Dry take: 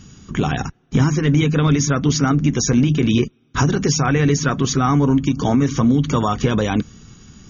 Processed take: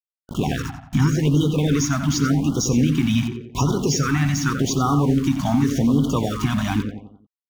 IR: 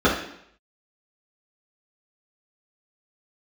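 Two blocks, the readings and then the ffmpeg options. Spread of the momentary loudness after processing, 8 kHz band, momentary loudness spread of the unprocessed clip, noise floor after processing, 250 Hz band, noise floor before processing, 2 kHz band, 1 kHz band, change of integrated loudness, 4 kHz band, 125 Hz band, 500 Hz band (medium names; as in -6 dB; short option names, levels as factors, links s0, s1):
7 LU, no reading, 6 LU, under -85 dBFS, -2.5 dB, -57 dBFS, -4.0 dB, -4.0 dB, -2.5 dB, -2.5 dB, -2.5 dB, -4.5 dB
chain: -filter_complex "[0:a]aeval=exprs='val(0)*gte(abs(val(0)),0.0376)':c=same,asplit=2[s0][s1];[s1]adelay=89,lowpass=f=3100:p=1,volume=0.447,asplit=2[s2][s3];[s3]adelay=89,lowpass=f=3100:p=1,volume=0.46,asplit=2[s4][s5];[s5]adelay=89,lowpass=f=3100:p=1,volume=0.46,asplit=2[s6][s7];[s7]adelay=89,lowpass=f=3100:p=1,volume=0.46,asplit=2[s8][s9];[s9]adelay=89,lowpass=f=3100:p=1,volume=0.46[s10];[s0][s2][s4][s6][s8][s10]amix=inputs=6:normalize=0,afftfilt=real='re*(1-between(b*sr/1024,400*pow(2100/400,0.5+0.5*sin(2*PI*0.87*pts/sr))/1.41,400*pow(2100/400,0.5+0.5*sin(2*PI*0.87*pts/sr))*1.41))':imag='im*(1-between(b*sr/1024,400*pow(2100/400,0.5+0.5*sin(2*PI*0.87*pts/sr))/1.41,400*pow(2100/400,0.5+0.5*sin(2*PI*0.87*pts/sr))*1.41))':win_size=1024:overlap=0.75,volume=0.708"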